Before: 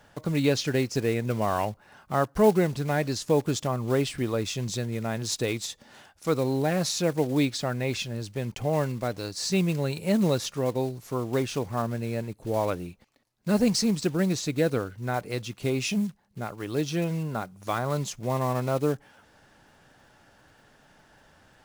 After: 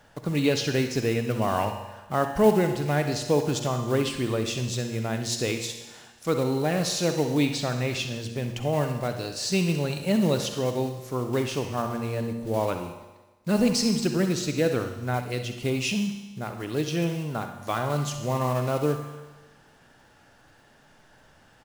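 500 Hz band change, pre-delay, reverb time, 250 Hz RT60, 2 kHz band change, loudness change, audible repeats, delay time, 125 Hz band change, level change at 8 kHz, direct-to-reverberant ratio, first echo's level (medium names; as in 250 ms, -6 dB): +1.0 dB, 36 ms, 1.2 s, 1.2 s, +2.0 dB, +1.0 dB, 1, 65 ms, +1.0 dB, +1.0 dB, 5.5 dB, -12.0 dB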